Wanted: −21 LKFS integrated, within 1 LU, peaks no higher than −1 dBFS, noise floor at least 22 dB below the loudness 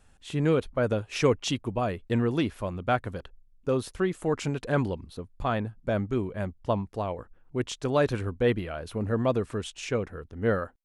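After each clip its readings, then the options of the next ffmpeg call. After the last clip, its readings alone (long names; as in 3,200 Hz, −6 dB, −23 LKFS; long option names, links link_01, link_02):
integrated loudness −29.0 LKFS; sample peak −10.0 dBFS; target loudness −21.0 LKFS
→ -af "volume=8dB"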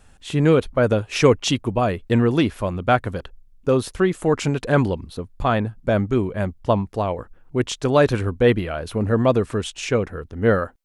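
integrated loudness −21.0 LKFS; sample peak −2.0 dBFS; background noise floor −52 dBFS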